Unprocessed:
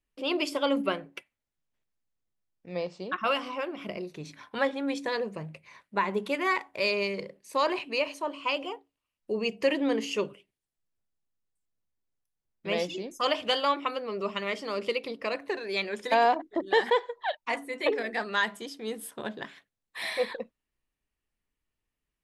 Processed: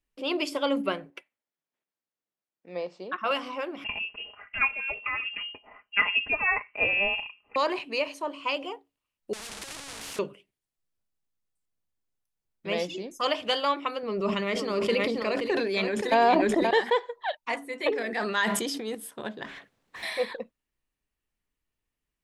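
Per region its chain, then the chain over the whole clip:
1.10–3.31 s: high-pass 270 Hz + treble shelf 3.8 kHz -7.5 dB
3.84–7.56 s: comb 5.1 ms, depth 64% + frequency inversion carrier 3 kHz
9.33–10.19 s: one-bit comparator + Bessel low-pass 5.8 kHz, order 4 + spectrum-flattening compressor 4:1
14.03–16.71 s: bass shelf 290 Hz +9 dB + delay 527 ms -8.5 dB + decay stretcher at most 27 dB/s
17.92–18.95 s: high-pass 60 Hz + decay stretcher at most 27 dB/s
19.45–20.03 s: bass shelf 460 Hz +11.5 dB + overdrive pedal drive 28 dB, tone 2.1 kHz, clips at -23 dBFS + compression 4:1, threshold -42 dBFS
whole clip: none

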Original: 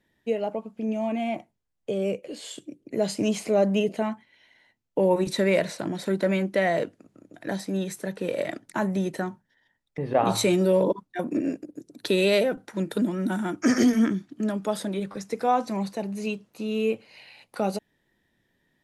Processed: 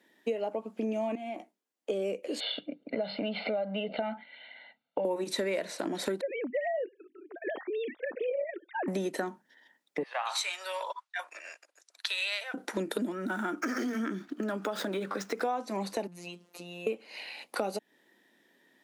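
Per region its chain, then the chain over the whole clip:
1.15–1.90 s: compression 10:1, threshold -33 dBFS + ladder high-pass 170 Hz, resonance 25% + doubling 16 ms -9 dB
2.40–5.05 s: steep low-pass 4.3 kHz 96 dB/octave + comb 1.4 ms, depth 86% + compression 2:1, threshold -31 dBFS
6.21–8.88 s: formants replaced by sine waves + compression 1.5:1, threshold -42 dBFS
10.03–12.54 s: Bessel high-pass 1.4 kHz, order 6 + distance through air 58 m
13.12–15.42 s: median filter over 5 samples + peaking EQ 1.4 kHz +8 dB 0.52 oct + compression 3:1, threshold -31 dBFS
16.07–16.87 s: compression 2:1, threshold -47 dBFS + robot voice 175 Hz
whole clip: high-pass 240 Hz 24 dB/octave; compression 6:1, threshold -36 dBFS; trim +6.5 dB

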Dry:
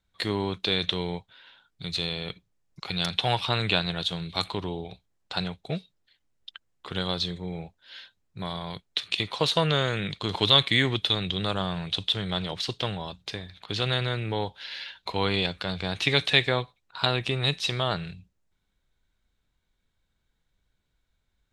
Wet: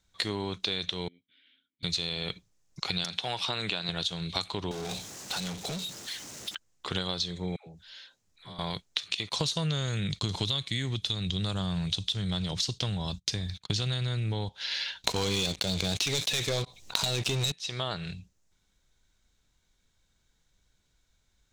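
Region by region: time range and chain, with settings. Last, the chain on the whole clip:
1.08–1.83 s: treble shelf 5.8 kHz -11 dB + compression 2.5:1, threshold -50 dBFS + vowel filter i
3.04–3.89 s: high-pass 150 Hz + compression 1.5:1, threshold -31 dBFS
4.71–6.55 s: high-pass 150 Hz + compression 12:1, threshold -45 dBFS + power-law waveshaper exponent 0.35
7.56–8.59 s: compression 2:1, threshold -58 dBFS + phase dispersion lows, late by 112 ms, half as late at 640 Hz
9.29–14.49 s: tone controls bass +12 dB, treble +8 dB + gate -43 dBFS, range -28 dB
15.04–17.52 s: peaking EQ 1.4 kHz -12 dB 0.94 oct + waveshaping leveller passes 5 + level flattener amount 50%
whole clip: peaking EQ 6.3 kHz +11 dB 1 oct; compression 12:1, threshold -30 dBFS; trim +3 dB

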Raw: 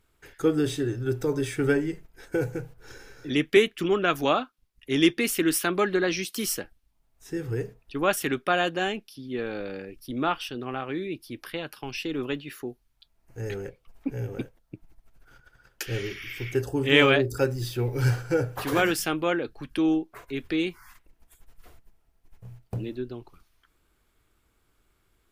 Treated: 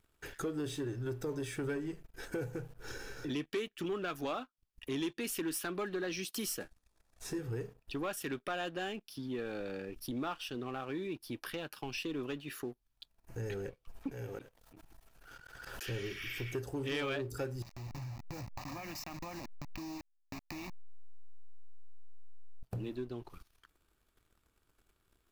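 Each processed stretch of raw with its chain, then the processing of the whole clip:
6.60–7.39 s: CVSD coder 64 kbps + band-stop 3 kHz, Q 9.6 + doubling 15 ms -6.5 dB
14.11–15.89 s: bass shelf 350 Hz -9 dB + slow attack 109 ms + swell ahead of each attack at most 32 dB/s
17.62–22.63 s: send-on-delta sampling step -27 dBFS + static phaser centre 2.2 kHz, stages 8 + compression 12:1, threshold -41 dBFS
whole clip: band-stop 2.1 kHz, Q 13; compression 2.5:1, threshold -44 dBFS; waveshaping leveller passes 2; trim -4 dB

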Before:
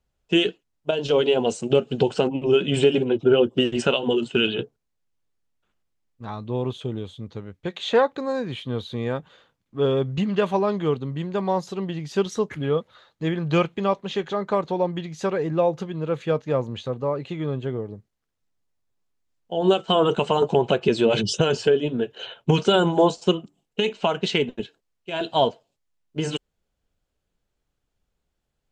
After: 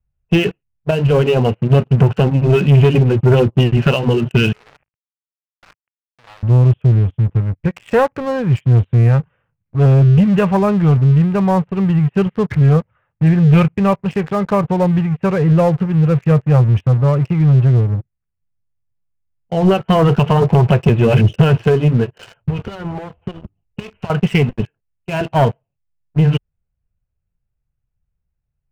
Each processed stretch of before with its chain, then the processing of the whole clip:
4.52–6.43 s: one-bit comparator + band-pass 600–2700 Hz + companded quantiser 4-bit
22.42–24.10 s: resonant low shelf 110 Hz +8 dB, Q 3 + compression 12:1, threshold -31 dBFS
whole clip: steep low-pass 2.8 kHz 72 dB/octave; resonant low shelf 190 Hz +13.5 dB, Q 1.5; waveshaping leveller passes 3; trim -3.5 dB

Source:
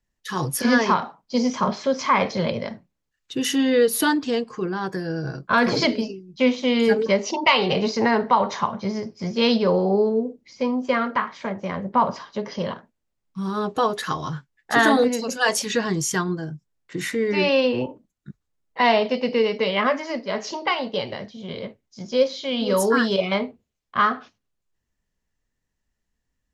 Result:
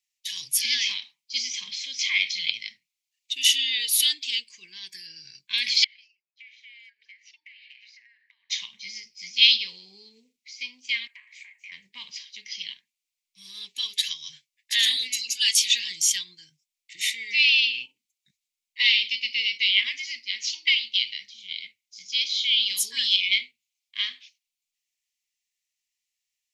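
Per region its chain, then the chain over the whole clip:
5.84–8.50 s: band-pass filter 1.7 kHz, Q 8.5 + compression 12:1, threshold -45 dBFS
11.07–11.72 s: Chebyshev high-pass 760 Hz, order 3 + high-order bell 4.3 kHz -11.5 dB 1.2 oct + compression 3:1, threshold -36 dBFS
whole clip: dynamic bell 3.4 kHz, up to +8 dB, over -44 dBFS, Q 2.5; elliptic high-pass 2.2 kHz, stop band 40 dB; trim +5 dB

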